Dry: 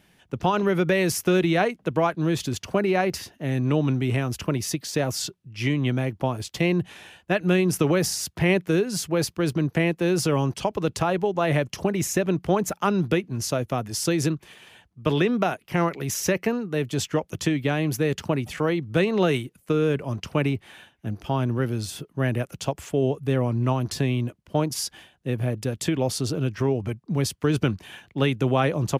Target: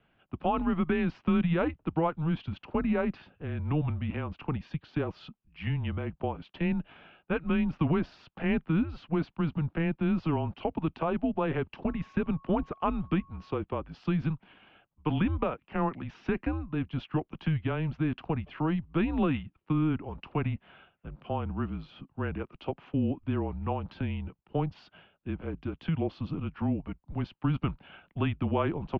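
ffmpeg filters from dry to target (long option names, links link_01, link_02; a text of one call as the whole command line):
ffmpeg -i in.wav -filter_complex "[0:a]highpass=frequency=280:width_type=q:width=0.5412,highpass=frequency=280:width_type=q:width=1.307,lowpass=frequency=3000:width_type=q:width=0.5176,lowpass=frequency=3000:width_type=q:width=0.7071,lowpass=frequency=3000:width_type=q:width=1.932,afreqshift=-160,asettb=1/sr,asplit=3[link_01][link_02][link_03];[link_01]atrim=end=11.864[link_04];[link_02]atrim=start=11.86:end=13.58,asetpts=PTS-STARTPTS,afade=type=in:duration=0.004:curve=qsin,afade=type=out:start_time=1.716:duration=0.004:curve=qsin,aeval=exprs='val(0)+0.00282*sin(2*PI*1100*n/s)':channel_layout=same[link_05];[link_03]atrim=start=13.576[link_06];[link_04][link_05]acrossfade=duration=0.004:curve1=hsin:curve2=qsin[link_07];[link_07][link_06]acrossfade=duration=0.004:curve1=qsin:curve2=hsin,equalizer=frequency=250:width_type=o:width=1:gain=-3,equalizer=frequency=500:width_type=o:width=1:gain=-6,equalizer=frequency=2000:width_type=o:width=1:gain=-12" out.wav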